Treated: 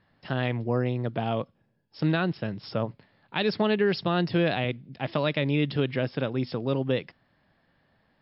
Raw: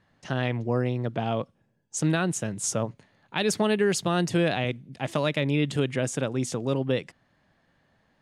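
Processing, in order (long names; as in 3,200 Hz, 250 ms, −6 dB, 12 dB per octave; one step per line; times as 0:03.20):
MP3 56 kbit/s 12,000 Hz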